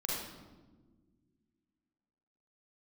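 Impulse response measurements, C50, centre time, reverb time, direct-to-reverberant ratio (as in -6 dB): -2.0 dB, 80 ms, not exponential, -5.0 dB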